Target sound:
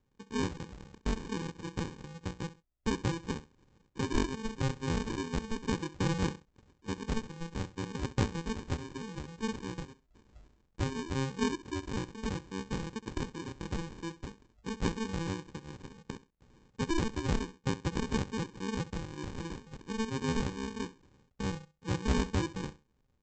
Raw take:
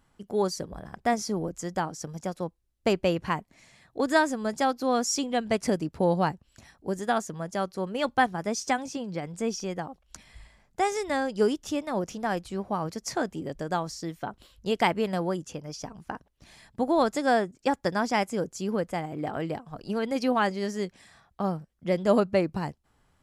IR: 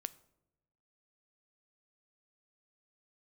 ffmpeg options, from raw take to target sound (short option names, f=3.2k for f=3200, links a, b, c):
-af "bandreject=f=2.7k:w=5.5,aresample=16000,acrusher=samples=24:mix=1:aa=0.000001,aresample=44100,aecho=1:1:66|132:0.158|0.038,volume=-7dB"